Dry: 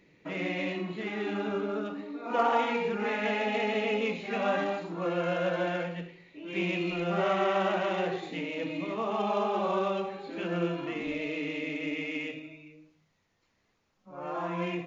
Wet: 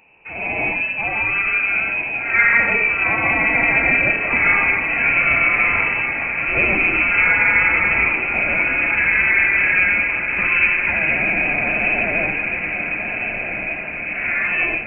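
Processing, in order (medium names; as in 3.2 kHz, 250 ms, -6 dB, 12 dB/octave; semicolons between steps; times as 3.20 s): companding laws mixed up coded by mu; level rider gain up to 11 dB; on a send: echo that smears into a reverb 1363 ms, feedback 63%, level -6 dB; on the sum: frequency inversion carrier 2.8 kHz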